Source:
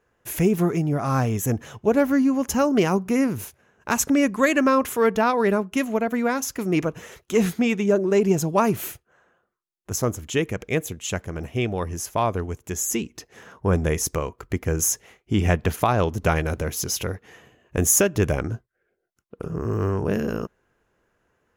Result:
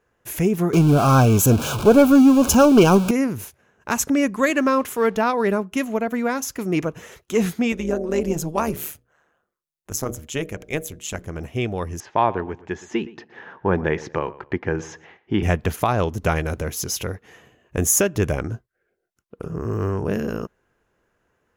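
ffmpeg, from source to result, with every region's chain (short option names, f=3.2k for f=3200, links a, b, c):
-filter_complex "[0:a]asettb=1/sr,asplit=3[a][b][c];[a]atrim=end=0.734[d];[b]atrim=start=0.73:end=3.11,asetpts=PTS-STARTPTS,afade=t=in:d=0.004:c=qsin,afade=t=out:st=2.376:d=0.004:c=qsin,aeval=exprs='val(0)+0.5*0.0376*sgn(val(0))':c=same,acontrast=77,asuperstop=centerf=1900:order=8:qfactor=3.1[e];[c]atrim=start=3.106[f];[d][e]acrossfade=d=0.004:c1=hsin:c2=qsin[g];[g][f]acrossfade=d=0.004:c1=qsin:c2=hsin,asettb=1/sr,asplit=3[h][i][j];[h]atrim=end=4.504[k];[i]atrim=start=4.5:end=5.16,asetpts=PTS-STARTPTS,afade=t=in:d=0.004:c=qsin,afade=t=out:st=0.656:d=0.004:c=qsin,highpass=86,aeval=exprs='sgn(val(0))*max(abs(val(0))-0.00398,0)':c=same[l];[j]atrim=start=5.156[m];[k][l]acrossfade=d=0.004:c1=hsin:c2=qsin[n];[n][m]acrossfade=d=0.004:c1=qsin:c2=hsin,asettb=1/sr,asplit=3[o][p][q];[o]atrim=end=7.724[r];[p]atrim=start=7.72:end=11.26,asetpts=PTS-STARTPTS,afade=t=in:d=0.004:c=qsin,afade=t=out:st=3.536:d=0.004:c=qsin,highshelf=f=6.3k:g=5,bandreject=f=60:t=h:w=6,bandreject=f=120:t=h:w=6,bandreject=f=180:t=h:w=6,bandreject=f=240:t=h:w=6,bandreject=f=300:t=h:w=6,bandreject=f=360:t=h:w=6,bandreject=f=420:t=h:w=6,bandreject=f=480:t=h:w=6,bandreject=f=540:t=h:w=6,bandreject=f=600:t=h:w=6,tremolo=f=150:d=0.667[s];[q]atrim=start=11.256[t];[r][s]acrossfade=d=0.004:c1=hsin:c2=qsin[u];[u][t]acrossfade=d=0.004:c1=qsin:c2=hsin,asettb=1/sr,asplit=3[v][w][x];[v]atrim=end=12.004[y];[w]atrim=start=12:end=15.43,asetpts=PTS-STARTPTS,afade=t=in:d=0.004:c=qsin,afade=t=out:st=3.426:d=0.004:c=qsin,highpass=120,equalizer=f=360:t=q:w=4:g=5,equalizer=f=870:t=q:w=4:g=9,equalizer=f=1.7k:t=q:w=4:g=8,lowpass=f=3.9k:w=0.5412,lowpass=f=3.9k:w=1.3066,asplit=2[z][aa];[aa]adelay=119,lowpass=f=2.7k:p=1,volume=-18dB,asplit=2[ab][ac];[ac]adelay=119,lowpass=f=2.7k:p=1,volume=0.3,asplit=2[ad][ae];[ae]adelay=119,lowpass=f=2.7k:p=1,volume=0.3[af];[z][ab][ad][af]amix=inputs=4:normalize=0,atrim=end_sample=151263[ag];[x]atrim=start=15.426[ah];[y][ag]acrossfade=d=0.004:c1=hsin:c2=qsin[ai];[ai][ah]acrossfade=d=0.004:c1=qsin:c2=hsin"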